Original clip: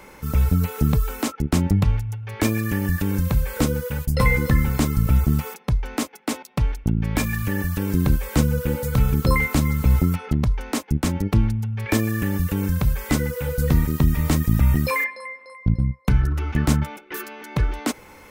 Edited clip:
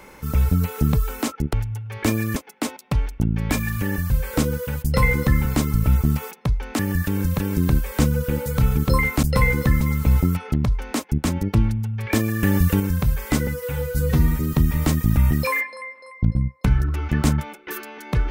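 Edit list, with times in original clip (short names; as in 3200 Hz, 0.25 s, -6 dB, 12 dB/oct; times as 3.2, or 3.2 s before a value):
1.53–1.9 cut
2.73–3.33 swap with 6.02–7.76
4.07–4.65 copy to 9.6
12.22–12.59 gain +5 dB
13.26–13.97 stretch 1.5×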